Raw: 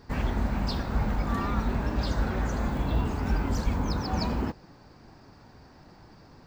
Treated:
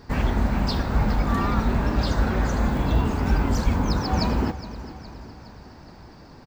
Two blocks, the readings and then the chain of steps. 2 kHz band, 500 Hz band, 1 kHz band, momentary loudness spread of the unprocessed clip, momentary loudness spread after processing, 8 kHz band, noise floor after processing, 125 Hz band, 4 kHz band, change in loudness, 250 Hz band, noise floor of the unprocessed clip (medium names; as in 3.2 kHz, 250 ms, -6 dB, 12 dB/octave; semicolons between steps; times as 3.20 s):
+5.5 dB, +5.5 dB, +5.5 dB, 2 LU, 15 LU, no reading, -46 dBFS, +5.5 dB, +5.5 dB, +5.5 dB, +6.0 dB, -54 dBFS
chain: feedback delay 415 ms, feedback 55%, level -15 dB; trim +5.5 dB